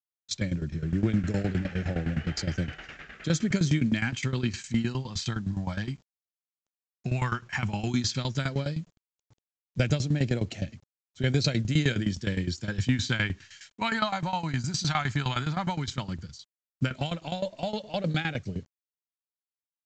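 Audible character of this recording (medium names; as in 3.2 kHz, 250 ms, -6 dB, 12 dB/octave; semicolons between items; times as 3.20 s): phasing stages 2, 0.12 Hz, lowest notch 490–1000 Hz; tremolo saw down 9.7 Hz, depth 85%; a quantiser's noise floor 12-bit, dither none; µ-law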